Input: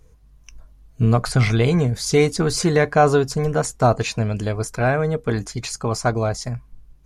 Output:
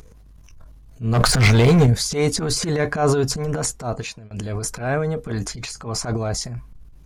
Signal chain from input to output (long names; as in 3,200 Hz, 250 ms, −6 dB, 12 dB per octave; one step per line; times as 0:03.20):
0:01.13–0:01.87: leveller curve on the samples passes 3
0:03.52–0:04.31: fade out
0:05.48–0:06.00: high-shelf EQ 5,700 Hz −5.5 dB
transient designer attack −12 dB, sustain +9 dB
upward compression, threshold −36 dBFS
level −2.5 dB